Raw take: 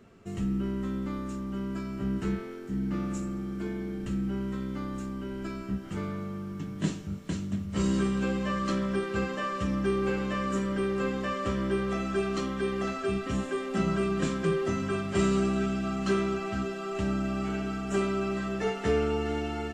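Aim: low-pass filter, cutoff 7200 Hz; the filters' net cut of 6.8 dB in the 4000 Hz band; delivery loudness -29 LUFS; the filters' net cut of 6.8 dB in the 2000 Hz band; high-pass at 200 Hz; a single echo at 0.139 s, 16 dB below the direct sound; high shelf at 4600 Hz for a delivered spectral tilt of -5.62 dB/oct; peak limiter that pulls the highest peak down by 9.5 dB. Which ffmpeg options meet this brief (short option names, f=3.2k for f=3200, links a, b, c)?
-af "highpass=200,lowpass=7.2k,equalizer=f=2k:t=o:g=-8,equalizer=f=4k:t=o:g=-8,highshelf=f=4.6k:g=4.5,alimiter=level_in=2dB:limit=-24dB:level=0:latency=1,volume=-2dB,aecho=1:1:139:0.158,volume=6.5dB"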